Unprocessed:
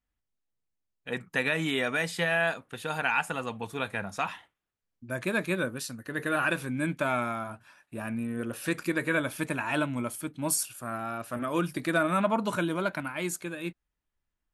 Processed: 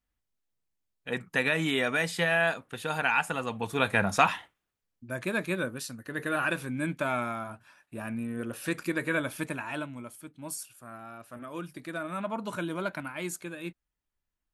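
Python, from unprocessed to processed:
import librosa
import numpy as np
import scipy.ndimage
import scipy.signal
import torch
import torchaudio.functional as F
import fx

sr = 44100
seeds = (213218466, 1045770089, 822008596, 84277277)

y = fx.gain(x, sr, db=fx.line((3.46, 1.0), (4.11, 10.0), (5.08, -1.5), (9.39, -1.5), (10.0, -10.0), (11.99, -10.0), (12.81, -3.0)))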